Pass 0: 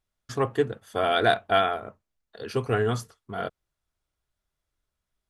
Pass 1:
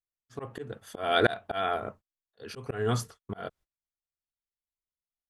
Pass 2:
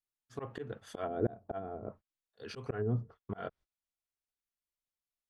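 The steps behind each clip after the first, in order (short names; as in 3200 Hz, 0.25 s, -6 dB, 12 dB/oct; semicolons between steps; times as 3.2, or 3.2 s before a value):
gate -50 dBFS, range -26 dB; auto swell 0.308 s; gain +3 dB
treble ducked by the level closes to 370 Hz, closed at -27 dBFS; gain -2.5 dB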